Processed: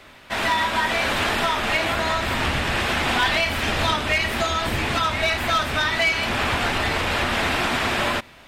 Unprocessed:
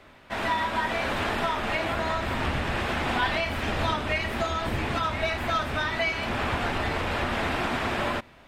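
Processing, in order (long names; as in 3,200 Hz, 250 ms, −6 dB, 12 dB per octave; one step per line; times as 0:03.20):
high-shelf EQ 2,100 Hz +9 dB
hard clipping −17 dBFS, distortion −24 dB
level +3 dB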